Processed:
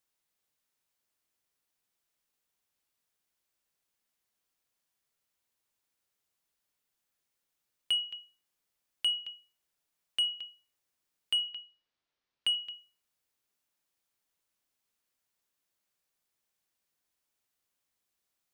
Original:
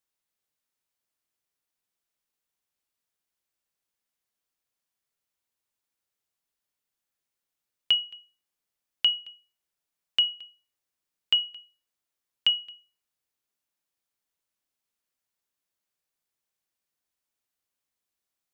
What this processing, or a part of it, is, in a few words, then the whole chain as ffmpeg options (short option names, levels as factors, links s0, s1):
soft clipper into limiter: -filter_complex "[0:a]asettb=1/sr,asplit=3[s0][s1][s2];[s0]atrim=end=11.484[s3];[s1]atrim=start=11.48:end=12.55,asetpts=PTS-STARTPTS,afade=t=in:d=0.004:c=qsin,afade=t=out:st=1.066:d=0.004:c=qsin,lowpass=f=5000:w=0.5412,lowpass=f=5000:w=1.3066[s4];[s2]atrim=start=12.546[s5];[s3][s4]acrossfade=d=0.004:c1=hsin:c2=qsin[s6];[s6][s5]acrossfade=d=0.004:c1=qsin:c2=hsin,asoftclip=type=tanh:threshold=0.119,alimiter=level_in=1.26:limit=0.0631:level=0:latency=1:release=208,volume=0.794,volume=1.33"